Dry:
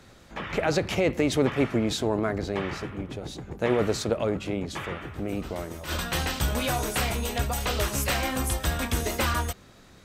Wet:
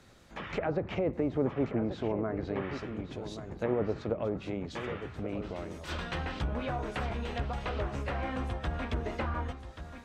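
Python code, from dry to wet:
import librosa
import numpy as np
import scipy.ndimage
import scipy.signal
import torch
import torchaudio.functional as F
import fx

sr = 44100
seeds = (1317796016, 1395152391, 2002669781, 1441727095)

y = fx.env_lowpass_down(x, sr, base_hz=1000.0, full_db=-21.0)
y = y + 10.0 ** (-10.5 / 20.0) * np.pad(y, (int(1132 * sr / 1000.0), 0))[:len(y)]
y = y * 10.0 ** (-6.0 / 20.0)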